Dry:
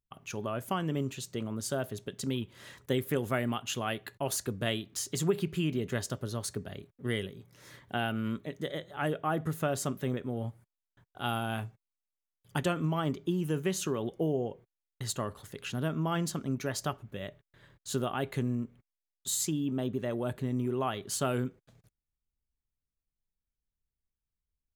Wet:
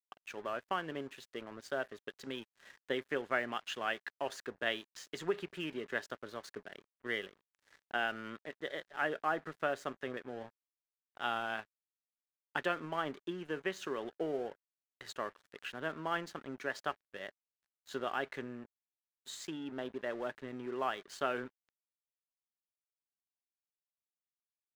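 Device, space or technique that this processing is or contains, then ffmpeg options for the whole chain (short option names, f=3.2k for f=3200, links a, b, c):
pocket radio on a weak battery: -af "highpass=390,lowpass=3.7k,aeval=exprs='sgn(val(0))*max(abs(val(0))-0.00251,0)':c=same,equalizer=f=1.7k:t=o:w=0.53:g=7,volume=-2dB"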